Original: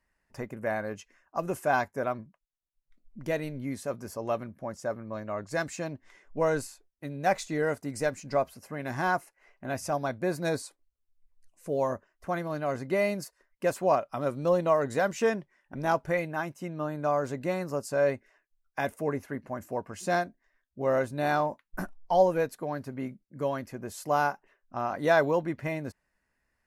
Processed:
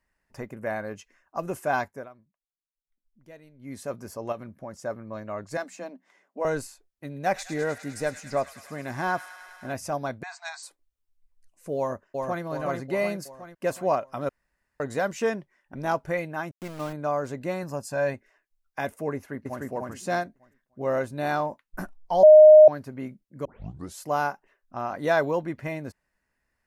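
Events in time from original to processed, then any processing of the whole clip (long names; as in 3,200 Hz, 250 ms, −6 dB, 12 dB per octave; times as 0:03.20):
0:01.86–0:03.81: duck −18 dB, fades 0.23 s
0:04.32–0:04.82: downward compressor 2.5 to 1, threshold −34 dBFS
0:05.57–0:06.45: Chebyshev high-pass with heavy ripple 180 Hz, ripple 6 dB
0:07.06–0:09.73: delay with a high-pass on its return 102 ms, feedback 82%, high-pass 1,900 Hz, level −9 dB
0:10.23–0:10.63: linear-phase brick-wall band-pass 670–8,500 Hz
0:11.77–0:12.43: delay throw 370 ms, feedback 55%, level −3 dB
0:14.29–0:14.80: fill with room tone
0:16.51–0:16.93: centre clipping without the shift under −37.5 dBFS
0:17.63–0:18.14: comb filter 1.2 ms, depth 47%
0:19.15–0:19.63: delay throw 300 ms, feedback 25%, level −0.5 dB
0:22.23–0:22.68: beep over 616 Hz −7 dBFS
0:23.45: tape start 0.51 s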